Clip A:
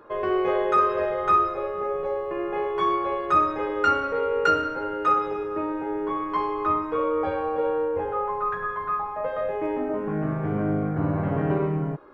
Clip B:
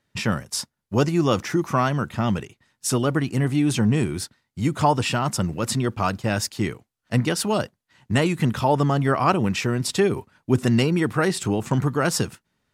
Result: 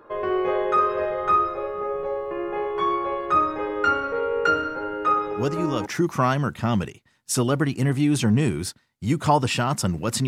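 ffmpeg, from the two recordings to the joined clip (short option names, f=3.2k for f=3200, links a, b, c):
-filter_complex "[1:a]asplit=2[a][b];[0:a]apad=whole_dur=10.27,atrim=end=10.27,atrim=end=5.862[c];[b]atrim=start=1.408:end=5.82[d];[a]atrim=start=0.74:end=1.41,asetpts=PTS-STARTPTS,volume=-6.5dB,afade=t=in:d=0.004:c=hsin,afade=t=out:st=0.666:d=0.004:c=hsin,adelay=5190[e];[c][d]acrossfade=d=0.004:c1=hsin:c2=hsin[f];[f][e]amix=inputs=2:normalize=0"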